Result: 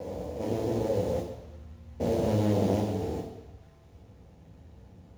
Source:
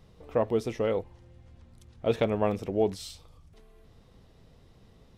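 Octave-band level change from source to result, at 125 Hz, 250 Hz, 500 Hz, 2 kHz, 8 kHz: +6.5, +3.5, −1.5, −5.0, +1.0 decibels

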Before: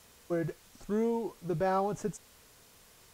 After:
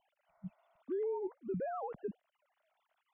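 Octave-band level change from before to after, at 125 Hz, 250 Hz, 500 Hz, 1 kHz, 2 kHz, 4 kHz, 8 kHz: −11.0 dB, −10.5 dB, −6.0 dB, −10.0 dB, −13.5 dB, below −25 dB, below −30 dB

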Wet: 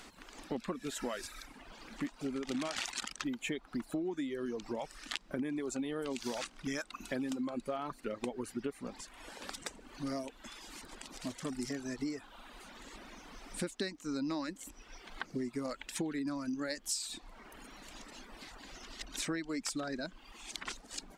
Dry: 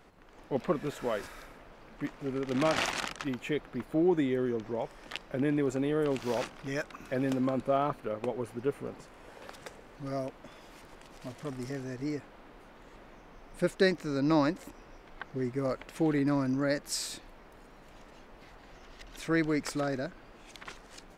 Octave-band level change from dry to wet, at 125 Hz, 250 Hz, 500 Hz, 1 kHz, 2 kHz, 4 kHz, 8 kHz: −11.5, −6.0, −9.5, −8.0, −5.5, −1.0, +2.0 decibels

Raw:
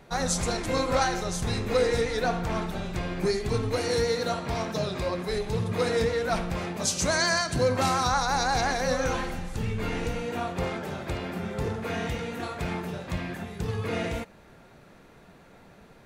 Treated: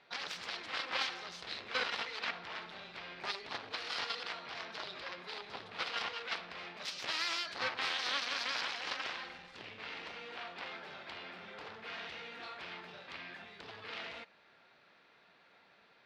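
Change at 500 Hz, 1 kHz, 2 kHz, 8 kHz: −21.5, −13.5, −7.0, −19.5 decibels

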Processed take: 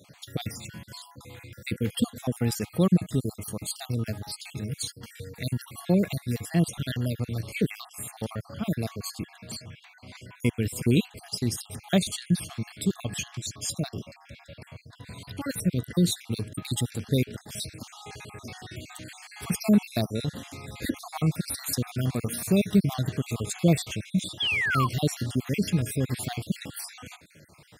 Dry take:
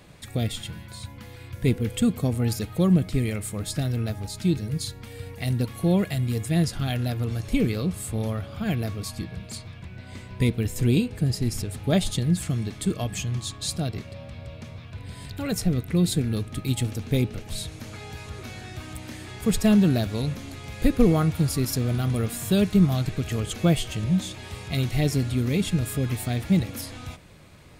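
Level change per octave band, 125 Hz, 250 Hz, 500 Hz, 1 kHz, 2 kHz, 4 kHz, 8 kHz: −4.5, −3.5, −3.0, 0.0, +2.0, −0.5, 0.0 decibels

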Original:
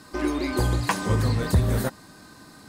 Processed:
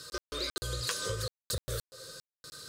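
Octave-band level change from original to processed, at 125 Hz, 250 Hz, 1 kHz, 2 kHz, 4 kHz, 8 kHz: −17.0, −22.5, −14.5, −9.5, +0.5, −1.0 decibels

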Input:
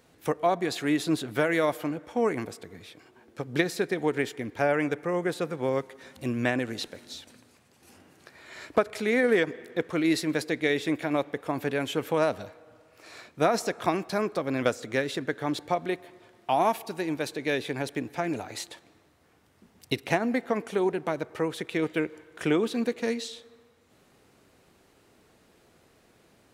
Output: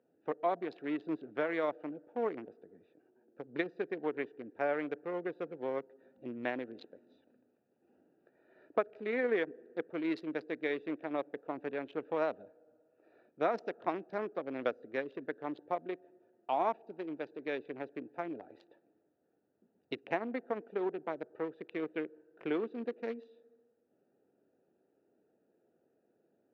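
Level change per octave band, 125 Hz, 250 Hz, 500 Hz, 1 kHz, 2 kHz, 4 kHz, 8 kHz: −18.5 dB, −10.5 dB, −8.0 dB, −8.0 dB, −10.5 dB, −17.5 dB, below −35 dB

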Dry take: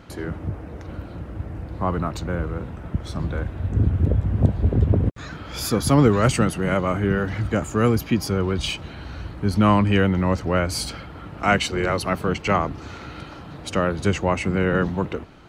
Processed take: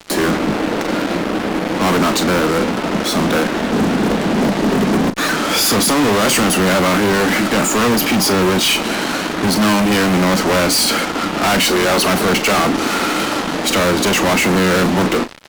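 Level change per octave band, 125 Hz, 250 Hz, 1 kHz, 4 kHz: −1.0, +8.0, +9.0, +15.0 decibels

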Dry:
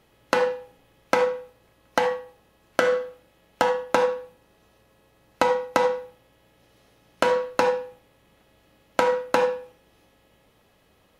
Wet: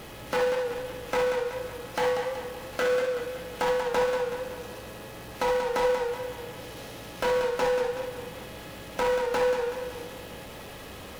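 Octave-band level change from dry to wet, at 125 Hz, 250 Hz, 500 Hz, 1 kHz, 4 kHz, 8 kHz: +4.0, −4.5, −1.5, −4.5, −1.0, −0.5 decibels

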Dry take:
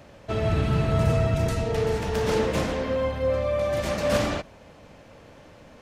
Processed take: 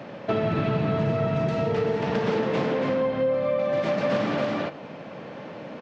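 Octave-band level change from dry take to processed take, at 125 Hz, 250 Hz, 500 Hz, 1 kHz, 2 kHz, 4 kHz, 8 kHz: −3.5 dB, +2.5 dB, +1.5 dB, +1.5 dB, +0.5 dB, −3.0 dB, below −10 dB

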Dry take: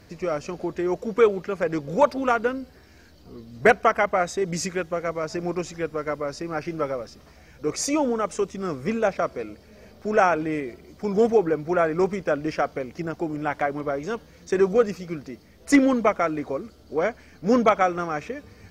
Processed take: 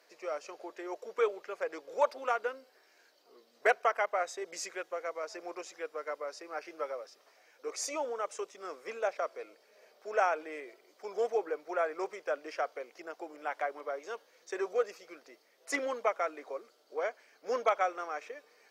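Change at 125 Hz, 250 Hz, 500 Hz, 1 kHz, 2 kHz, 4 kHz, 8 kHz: below −40 dB, −23.0 dB, −11.0 dB, −9.0 dB, −9.0 dB, −9.0 dB, −9.0 dB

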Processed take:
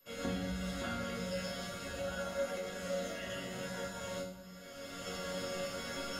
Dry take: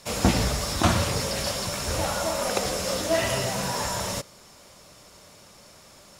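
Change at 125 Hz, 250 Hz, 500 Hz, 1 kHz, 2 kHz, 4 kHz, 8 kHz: −15.5, −11.0, −10.0, −15.0, −10.5, −14.0, −17.5 decibels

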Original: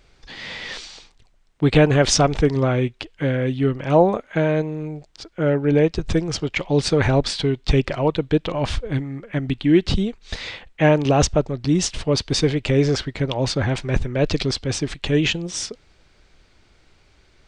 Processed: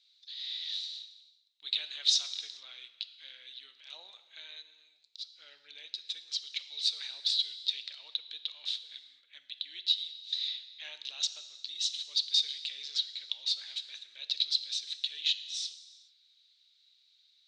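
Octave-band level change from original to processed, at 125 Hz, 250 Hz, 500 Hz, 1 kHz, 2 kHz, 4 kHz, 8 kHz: below −40 dB, below −40 dB, below −40 dB, below −35 dB, −20.5 dB, −1.5 dB, −12.5 dB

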